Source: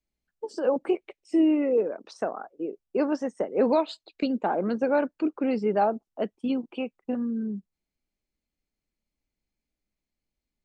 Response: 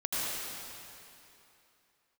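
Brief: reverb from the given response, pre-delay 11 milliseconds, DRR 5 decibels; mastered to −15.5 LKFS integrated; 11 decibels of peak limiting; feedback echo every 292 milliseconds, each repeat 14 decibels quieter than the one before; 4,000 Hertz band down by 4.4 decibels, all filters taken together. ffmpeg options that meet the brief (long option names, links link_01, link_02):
-filter_complex "[0:a]equalizer=frequency=4000:width_type=o:gain=-6,alimiter=limit=-23dB:level=0:latency=1,aecho=1:1:292|584:0.2|0.0399,asplit=2[link_01][link_02];[1:a]atrim=start_sample=2205,adelay=11[link_03];[link_02][link_03]afir=irnorm=-1:irlink=0,volume=-13dB[link_04];[link_01][link_04]amix=inputs=2:normalize=0,volume=16dB"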